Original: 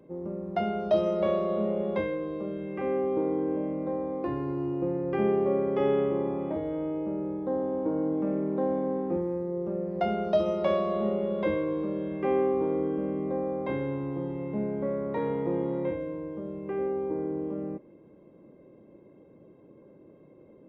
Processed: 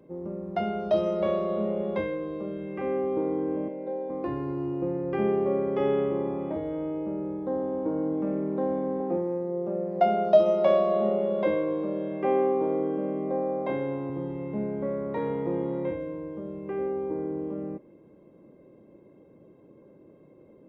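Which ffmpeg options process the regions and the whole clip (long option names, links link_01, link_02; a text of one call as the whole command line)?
ffmpeg -i in.wav -filter_complex "[0:a]asettb=1/sr,asplit=3[link_01][link_02][link_03];[link_01]atrim=end=3.684[link_04];[link_02]atrim=start=3.68:end=4.1,asetpts=PTS-STARTPTS,afade=type=in:duration=0.004:curve=qsin,afade=type=out:start_time=0.416:duration=0.004:curve=qsin,asuperstop=centerf=1200:order=4:qfactor=4.4,highpass=350,equalizer=frequency=480:width_type=q:width=4:gain=4,equalizer=frequency=680:width_type=q:width=4:gain=-8,equalizer=frequency=1200:width_type=q:width=4:gain=-9,equalizer=frequency=1900:width_type=q:width=4:gain=-5,lowpass=frequency=4500:width=0.5412,lowpass=frequency=4500:width=1.3066,aecho=1:1:5.2:0.44,atrim=end_sample=18522[link_05];[link_03]atrim=start=4.096[link_06];[link_04][link_05]acrossfade=duration=0.004:curve1=hsin:curve2=qsin[link_07];[link_07][link_06]acrossfade=duration=0.004:curve1=qsin:curve2=hsin,asettb=1/sr,asplit=3[link_08][link_09][link_10];[link_08]atrim=end=9.004[link_11];[link_09]atrim=start=9:end=14.1,asetpts=PTS-STARTPTS,afade=type=in:duration=0.004:curve=qsin,afade=type=out:start_time=5.096:duration=0.004:curve=qsin,highpass=140,equalizer=frequency=670:width=2.7:gain=8[link_12];[link_10]atrim=start=14.096[link_13];[link_11][link_12]acrossfade=duration=0.004:curve1=hsin:curve2=qsin[link_14];[link_14][link_13]acrossfade=duration=0.004:curve1=qsin:curve2=hsin" out.wav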